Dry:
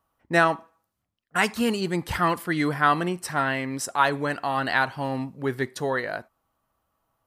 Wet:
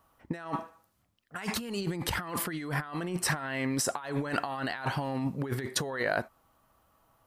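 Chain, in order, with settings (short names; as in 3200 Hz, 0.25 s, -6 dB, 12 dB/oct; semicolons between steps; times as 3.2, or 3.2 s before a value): negative-ratio compressor -34 dBFS, ratio -1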